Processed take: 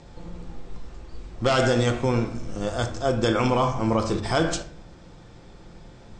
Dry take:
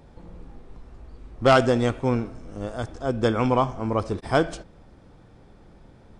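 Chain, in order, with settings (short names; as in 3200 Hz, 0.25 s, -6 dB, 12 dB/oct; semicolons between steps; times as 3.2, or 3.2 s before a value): steep low-pass 8300 Hz 72 dB/oct; high shelf 2800 Hz +10.5 dB; de-hum 72.17 Hz, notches 35; limiter -15.5 dBFS, peak gain reduction 12 dB; reverb RT60 0.50 s, pre-delay 6 ms, DRR 7.5 dB; gain +3 dB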